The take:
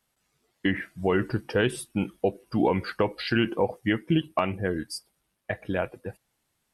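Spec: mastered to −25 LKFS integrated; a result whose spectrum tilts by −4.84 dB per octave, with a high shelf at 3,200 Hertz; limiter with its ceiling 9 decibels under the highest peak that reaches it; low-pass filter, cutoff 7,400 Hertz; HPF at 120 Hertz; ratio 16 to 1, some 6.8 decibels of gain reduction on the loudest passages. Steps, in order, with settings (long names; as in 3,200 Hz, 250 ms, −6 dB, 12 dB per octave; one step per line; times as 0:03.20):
high-pass filter 120 Hz
low-pass filter 7,400 Hz
high-shelf EQ 3,200 Hz −6 dB
downward compressor 16 to 1, threshold −25 dBFS
level +10.5 dB
brickwall limiter −10.5 dBFS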